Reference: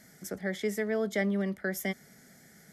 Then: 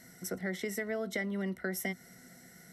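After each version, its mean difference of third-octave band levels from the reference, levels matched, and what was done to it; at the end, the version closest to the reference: 4.0 dB: rippled EQ curve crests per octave 2, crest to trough 10 dB; compression, threshold -31 dBFS, peak gain reduction 7 dB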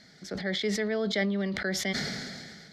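7.0 dB: resonant low-pass 4.2 kHz, resonance Q 4.6; decay stretcher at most 29 dB/s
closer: first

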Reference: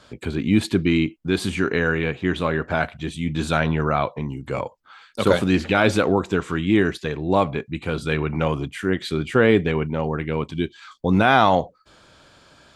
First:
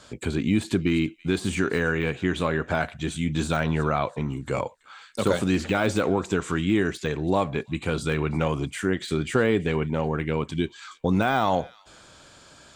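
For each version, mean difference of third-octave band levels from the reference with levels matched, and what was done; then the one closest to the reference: 3.5 dB: compression 2:1, threshold -21 dBFS, peak gain reduction 6 dB; on a send: feedback echo behind a high-pass 329 ms, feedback 35%, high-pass 1.9 kHz, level -22 dB; on the sum: de-esser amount 90%; peaking EQ 7.6 kHz +9 dB 0.8 oct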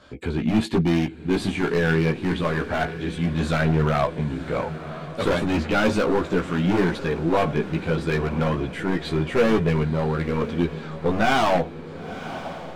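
7.5 dB: treble shelf 4.2 kHz -9.5 dB; hard clipper -18 dBFS, distortion -8 dB; chorus voices 4, 0.18 Hz, delay 15 ms, depth 3.5 ms; on a send: echo that smears into a reverb 996 ms, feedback 53%, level -13 dB; on the sum: trim +4.5 dB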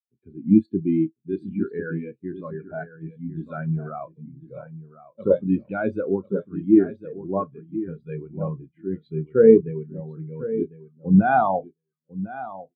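14.5 dB: high-pass 79 Hz; doubling 31 ms -11 dB; on a send: feedback delay 1049 ms, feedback 17%, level -6 dB; on the sum: spectral contrast expander 2.5:1; trim -1 dB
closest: first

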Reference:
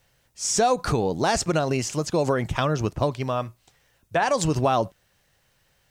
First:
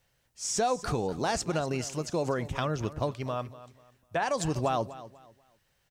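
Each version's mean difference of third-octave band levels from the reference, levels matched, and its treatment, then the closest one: 1.5 dB: feedback delay 246 ms, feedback 28%, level -16 dB; trim -7 dB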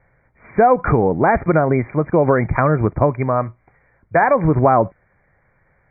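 8.0 dB: brick-wall FIR low-pass 2.4 kHz; trim +8 dB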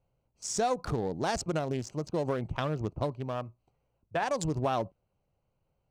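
3.0 dB: local Wiener filter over 25 samples; trim -7.5 dB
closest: first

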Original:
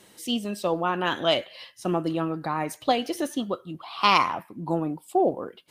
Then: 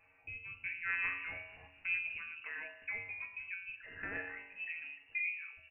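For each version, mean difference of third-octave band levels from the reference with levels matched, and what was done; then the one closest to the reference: 15.5 dB: compression 2.5:1, threshold -31 dBFS, peak gain reduction 11 dB; feedback comb 180 Hz, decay 0.73 s, harmonics all, mix 90%; on a send: frequency-shifting echo 241 ms, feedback 58%, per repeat -130 Hz, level -21 dB; on the sum: frequency inversion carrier 2.8 kHz; trim +4 dB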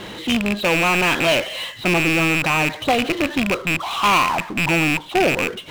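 12.0 dB: rattle on loud lows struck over -40 dBFS, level -12 dBFS; Chebyshev low-pass 4 kHz, order 6; bass shelf 67 Hz +10.5 dB; power-law waveshaper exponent 0.5; trim -2 dB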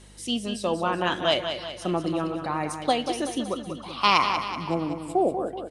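7.5 dB: elliptic low-pass 10 kHz, stop band 80 dB; treble shelf 7.1 kHz +4.5 dB; hum 50 Hz, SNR 24 dB; feedback delay 189 ms, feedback 50%, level -8 dB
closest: third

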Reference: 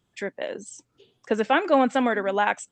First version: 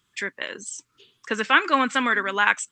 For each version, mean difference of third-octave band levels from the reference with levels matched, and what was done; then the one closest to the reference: 4.5 dB: FFT filter 390 Hz 0 dB, 720 Hz -8 dB, 1.1 kHz +11 dB; trim -3.5 dB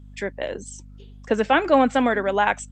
2.0 dB: hum 50 Hz, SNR 21 dB; trim +2.5 dB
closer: second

